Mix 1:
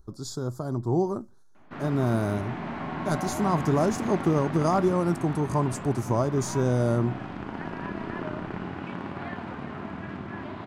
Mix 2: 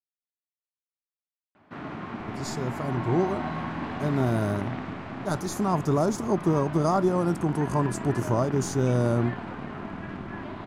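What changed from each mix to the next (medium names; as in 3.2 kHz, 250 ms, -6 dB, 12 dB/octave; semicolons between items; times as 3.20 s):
speech: entry +2.20 s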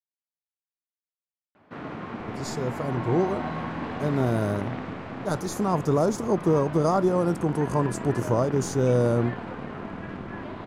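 master: add peaking EQ 490 Hz +9 dB 0.26 oct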